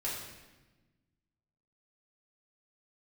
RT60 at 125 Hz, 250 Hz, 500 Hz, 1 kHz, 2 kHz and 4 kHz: 2.0, 1.8, 1.3, 1.1, 1.1, 1.0 s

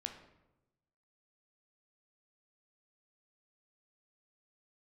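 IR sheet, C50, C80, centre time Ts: 8.0 dB, 10.5 dB, 19 ms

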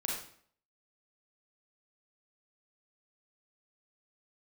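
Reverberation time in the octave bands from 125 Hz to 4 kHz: 0.55, 0.60, 0.60, 0.55, 0.55, 0.50 s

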